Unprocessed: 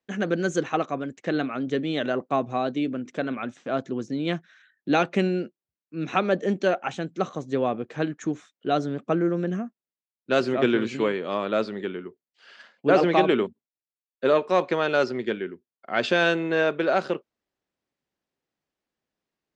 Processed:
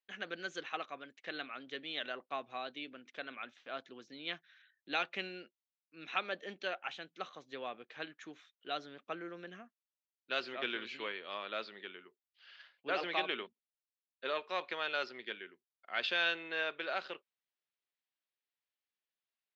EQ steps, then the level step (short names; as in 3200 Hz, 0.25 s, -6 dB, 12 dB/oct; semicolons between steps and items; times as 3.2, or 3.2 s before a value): LPF 3800 Hz 24 dB/oct; differentiator; +3.5 dB